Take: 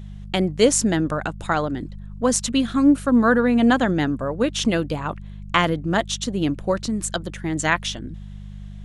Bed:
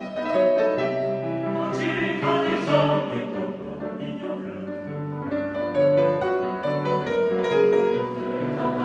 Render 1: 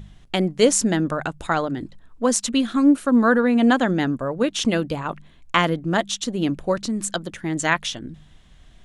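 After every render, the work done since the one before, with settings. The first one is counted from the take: de-hum 50 Hz, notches 4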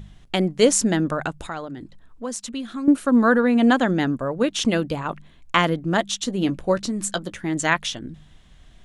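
1.48–2.88 s: compression 1.5:1, threshold -44 dBFS; 6.21–7.54 s: doubling 16 ms -12 dB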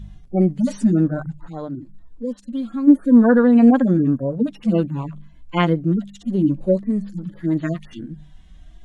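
harmonic-percussive separation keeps harmonic; bass shelf 490 Hz +7 dB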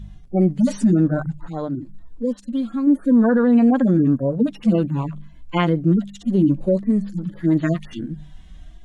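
level rider gain up to 4 dB; peak limiter -8.5 dBFS, peak gain reduction 6.5 dB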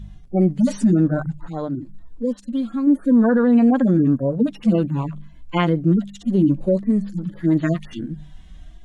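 no audible change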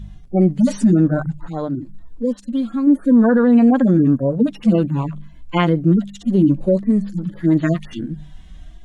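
trim +2.5 dB

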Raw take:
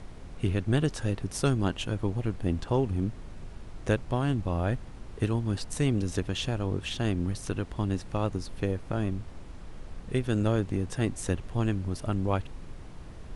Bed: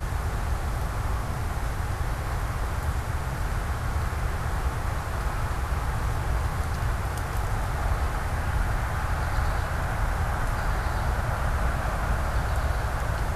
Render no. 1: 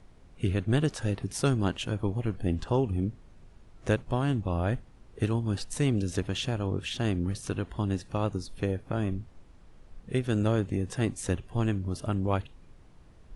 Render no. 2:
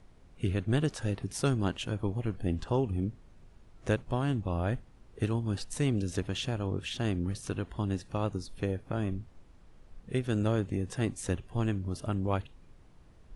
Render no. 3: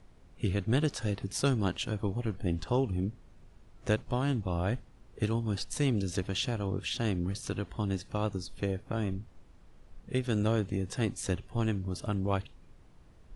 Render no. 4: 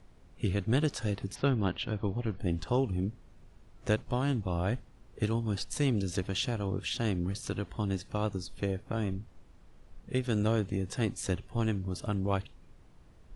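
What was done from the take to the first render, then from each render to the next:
noise print and reduce 11 dB
trim -2.5 dB
dynamic bell 4.7 kHz, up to +5 dB, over -57 dBFS, Q 1.1
1.34–2.38 s: low-pass 3.1 kHz -> 5.4 kHz 24 dB/octave

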